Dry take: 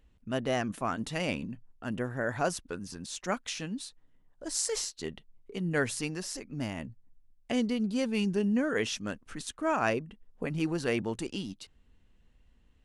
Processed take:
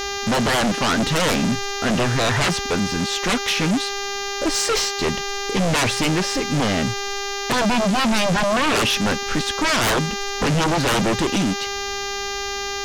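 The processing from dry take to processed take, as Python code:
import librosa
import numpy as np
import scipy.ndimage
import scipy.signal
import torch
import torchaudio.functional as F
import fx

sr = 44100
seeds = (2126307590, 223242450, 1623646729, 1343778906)

y = scipy.signal.sosfilt(scipy.signal.butter(2, 3900.0, 'lowpass', fs=sr, output='sos'), x)
y = fx.dmg_buzz(y, sr, base_hz=400.0, harmonics=17, level_db=-47.0, tilt_db=-2, odd_only=False)
y = fx.fold_sine(y, sr, drive_db=20, ceiling_db=-12.5)
y = y * librosa.db_to_amplitude(-3.0)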